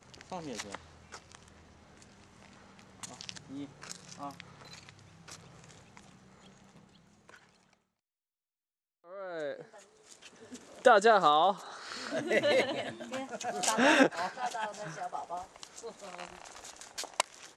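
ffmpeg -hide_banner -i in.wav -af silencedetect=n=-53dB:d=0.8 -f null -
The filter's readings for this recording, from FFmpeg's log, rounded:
silence_start: 7.73
silence_end: 9.04 | silence_duration: 1.31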